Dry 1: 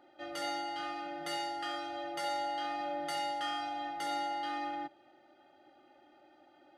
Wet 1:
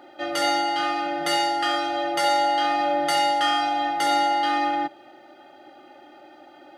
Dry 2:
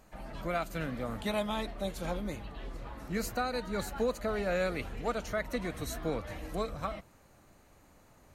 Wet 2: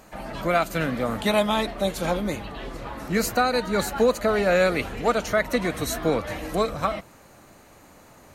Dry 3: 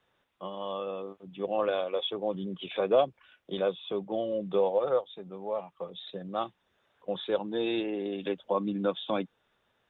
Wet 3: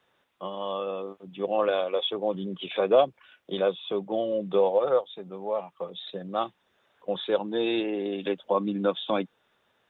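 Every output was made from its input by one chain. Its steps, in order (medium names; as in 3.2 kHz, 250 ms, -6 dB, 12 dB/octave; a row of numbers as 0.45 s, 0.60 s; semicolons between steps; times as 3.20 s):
bass shelf 90 Hz -11 dB; peak normalisation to -9 dBFS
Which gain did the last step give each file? +14.5 dB, +12.0 dB, +4.0 dB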